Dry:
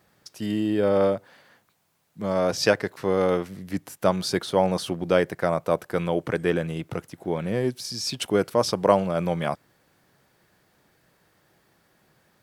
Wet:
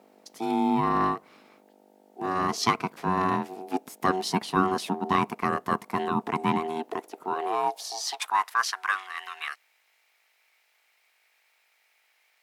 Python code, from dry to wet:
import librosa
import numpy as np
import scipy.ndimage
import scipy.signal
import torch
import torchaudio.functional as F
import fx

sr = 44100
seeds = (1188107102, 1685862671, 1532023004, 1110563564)

y = fx.dmg_buzz(x, sr, base_hz=50.0, harmonics=7, level_db=-58.0, tilt_db=-2, odd_only=False)
y = y * np.sin(2.0 * np.pi * 560.0 * np.arange(len(y)) / sr)
y = fx.filter_sweep_highpass(y, sr, from_hz=210.0, to_hz=2100.0, start_s=6.57, end_s=9.01, q=2.0)